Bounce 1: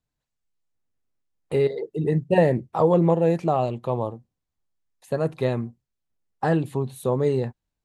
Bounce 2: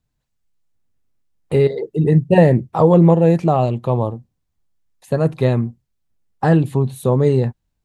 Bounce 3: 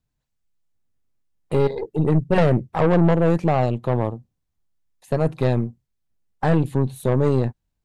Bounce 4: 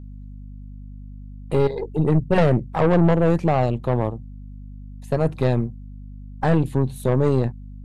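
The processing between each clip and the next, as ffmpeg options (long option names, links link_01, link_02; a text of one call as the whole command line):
ffmpeg -i in.wav -af "bass=frequency=250:gain=6,treble=frequency=4000:gain=0,volume=5dB" out.wav
ffmpeg -i in.wav -af "aeval=exprs='(tanh(4.47*val(0)+0.7)-tanh(0.7))/4.47':channel_layout=same" out.wav
ffmpeg -i in.wav -af "aeval=exprs='val(0)+0.0158*(sin(2*PI*50*n/s)+sin(2*PI*2*50*n/s)/2+sin(2*PI*3*50*n/s)/3+sin(2*PI*4*50*n/s)/4+sin(2*PI*5*50*n/s)/5)':channel_layout=same" out.wav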